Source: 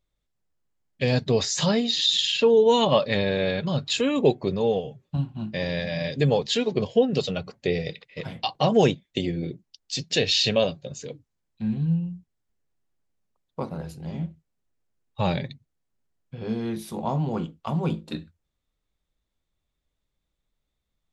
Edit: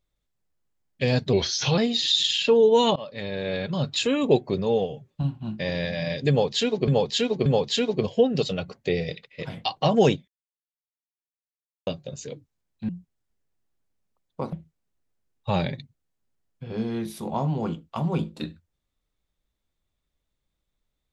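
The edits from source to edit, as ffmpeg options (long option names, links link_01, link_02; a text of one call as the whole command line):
ffmpeg -i in.wav -filter_complex "[0:a]asplit=10[link_01][link_02][link_03][link_04][link_05][link_06][link_07][link_08][link_09][link_10];[link_01]atrim=end=1.334[link_11];[link_02]atrim=start=1.33:end=1.72,asetpts=PTS-STARTPTS,asetrate=38367,aresample=44100[link_12];[link_03]atrim=start=1.716:end=2.9,asetpts=PTS-STARTPTS,afade=type=out:start_time=1.18:duration=0.004:curve=hsin:silence=0.0749894[link_13];[link_04]atrim=start=2.9:end=6.822,asetpts=PTS-STARTPTS,afade=type=in:duration=0.89:silence=0.0749894[link_14];[link_05]atrim=start=6.238:end=6.822[link_15];[link_06]atrim=start=6.238:end=9.06,asetpts=PTS-STARTPTS,afade=type=out:start_time=2.818:duration=0.004:curve=hsin[link_16];[link_07]atrim=start=9.06:end=10.65,asetpts=PTS-STARTPTS,volume=0[link_17];[link_08]atrim=start=10.65:end=11.672,asetpts=PTS-STARTPTS,afade=type=in:duration=0.004:curve=hsin[link_18];[link_09]atrim=start=12.078:end=13.722[link_19];[link_10]atrim=start=14.238[link_20];[link_11][link_12]acrossfade=duration=0.004:curve1=hsin:curve2=hsin[link_21];[link_13][link_14]concat=n=2:v=0:a=1[link_22];[link_21][link_22]acrossfade=duration=0.004:curve1=hsin:curve2=hsin[link_23];[link_23][link_15]acrossfade=duration=0.004:curve1=hsin:curve2=hsin[link_24];[link_16][link_17][link_18]concat=n=3:v=0:a=1[link_25];[link_24][link_25]acrossfade=duration=0.004:curve1=hsin:curve2=hsin[link_26];[link_26][link_19]acrossfade=duration=0.004:curve1=hsin:curve2=hsin[link_27];[link_27][link_20]acrossfade=duration=0.004:curve1=hsin:curve2=hsin" out.wav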